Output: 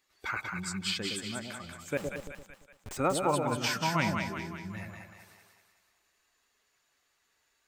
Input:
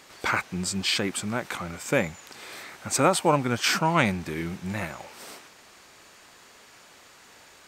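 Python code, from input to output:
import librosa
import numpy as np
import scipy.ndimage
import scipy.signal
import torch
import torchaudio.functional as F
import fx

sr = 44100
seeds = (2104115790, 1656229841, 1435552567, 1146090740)

y = fx.bin_expand(x, sr, power=1.5)
y = fx.schmitt(y, sr, flips_db=-38.0, at=(1.97, 2.97))
y = fx.echo_split(y, sr, split_hz=720.0, low_ms=114, high_ms=188, feedback_pct=52, wet_db=-4.0)
y = y * 10.0 ** (-6.0 / 20.0)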